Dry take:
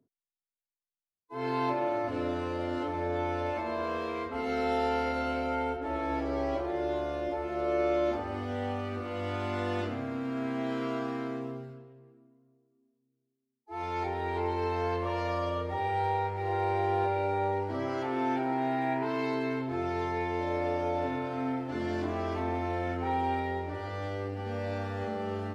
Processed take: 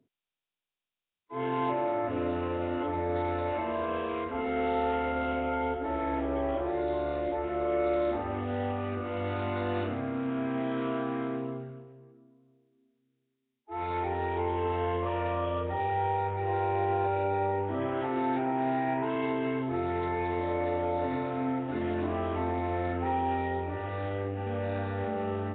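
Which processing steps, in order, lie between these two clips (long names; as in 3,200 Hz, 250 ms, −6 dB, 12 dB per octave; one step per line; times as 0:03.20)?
in parallel at −0.5 dB: brickwall limiter −25.5 dBFS, peak gain reduction 7.5 dB
on the sum: level −3.5 dB
Nellymoser 16 kbit/s 8,000 Hz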